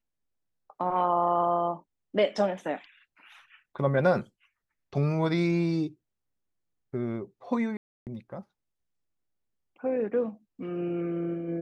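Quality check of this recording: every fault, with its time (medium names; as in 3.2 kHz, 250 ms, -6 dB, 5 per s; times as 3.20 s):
7.77–8.07 s: dropout 298 ms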